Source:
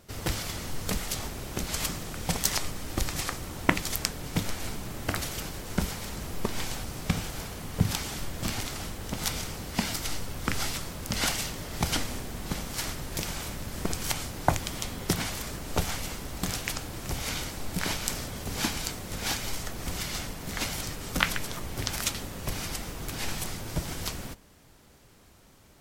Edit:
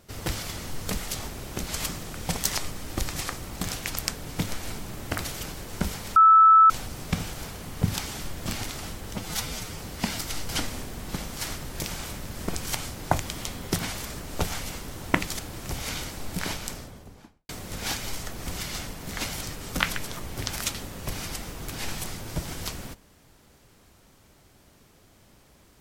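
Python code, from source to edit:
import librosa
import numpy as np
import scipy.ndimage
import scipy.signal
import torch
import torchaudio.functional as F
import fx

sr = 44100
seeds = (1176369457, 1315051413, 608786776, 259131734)

y = fx.studio_fade_out(x, sr, start_s=17.74, length_s=1.15)
y = fx.edit(y, sr, fx.swap(start_s=3.51, length_s=0.43, other_s=16.33, other_length_s=0.46),
    fx.bleep(start_s=6.13, length_s=0.54, hz=1310.0, db=-11.0),
    fx.stretch_span(start_s=9.11, length_s=0.44, factor=1.5),
    fx.cut(start_s=10.24, length_s=1.62), tone=tone)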